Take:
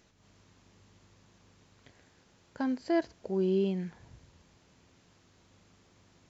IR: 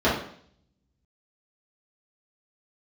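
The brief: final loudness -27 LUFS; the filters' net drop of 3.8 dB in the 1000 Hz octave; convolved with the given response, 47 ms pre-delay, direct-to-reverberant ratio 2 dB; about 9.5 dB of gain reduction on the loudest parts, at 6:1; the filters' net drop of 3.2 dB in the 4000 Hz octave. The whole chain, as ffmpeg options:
-filter_complex "[0:a]equalizer=f=1k:t=o:g=-6.5,equalizer=f=4k:t=o:g=-4,acompressor=threshold=-35dB:ratio=6,asplit=2[a][b];[1:a]atrim=start_sample=2205,adelay=47[c];[b][c]afir=irnorm=-1:irlink=0,volume=-20dB[d];[a][d]amix=inputs=2:normalize=0,volume=9.5dB"

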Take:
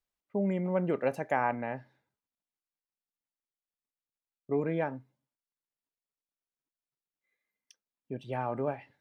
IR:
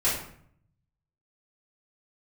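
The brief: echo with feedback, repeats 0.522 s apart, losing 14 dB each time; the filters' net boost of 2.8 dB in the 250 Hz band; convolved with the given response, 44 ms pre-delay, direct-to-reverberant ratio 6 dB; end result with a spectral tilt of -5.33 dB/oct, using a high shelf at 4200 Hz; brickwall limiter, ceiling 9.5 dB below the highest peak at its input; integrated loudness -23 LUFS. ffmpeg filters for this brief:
-filter_complex "[0:a]equalizer=f=250:t=o:g=4,highshelf=f=4.2k:g=6.5,alimiter=limit=-23dB:level=0:latency=1,aecho=1:1:522|1044:0.2|0.0399,asplit=2[a][b];[1:a]atrim=start_sample=2205,adelay=44[c];[b][c]afir=irnorm=-1:irlink=0,volume=-18dB[d];[a][d]amix=inputs=2:normalize=0,volume=10.5dB"

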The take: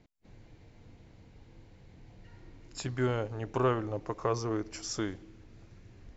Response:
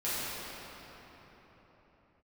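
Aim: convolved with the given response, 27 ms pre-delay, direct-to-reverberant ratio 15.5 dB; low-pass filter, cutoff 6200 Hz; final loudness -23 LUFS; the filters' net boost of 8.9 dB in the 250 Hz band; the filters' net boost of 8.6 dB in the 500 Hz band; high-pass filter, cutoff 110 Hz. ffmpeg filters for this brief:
-filter_complex "[0:a]highpass=110,lowpass=6.2k,equalizer=f=250:t=o:g=9,equalizer=f=500:t=o:g=7.5,asplit=2[a][b];[1:a]atrim=start_sample=2205,adelay=27[c];[b][c]afir=irnorm=-1:irlink=0,volume=-24.5dB[d];[a][d]amix=inputs=2:normalize=0,volume=3.5dB"

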